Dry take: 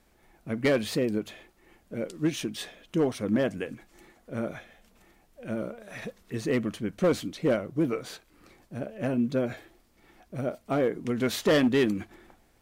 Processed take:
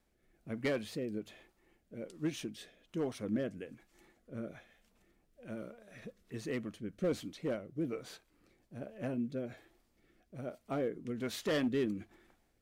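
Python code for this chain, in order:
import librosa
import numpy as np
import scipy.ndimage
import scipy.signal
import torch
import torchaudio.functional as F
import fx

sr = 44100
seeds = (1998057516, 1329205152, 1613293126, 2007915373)

y = fx.rotary(x, sr, hz=1.2)
y = y * librosa.db_to_amplitude(-8.5)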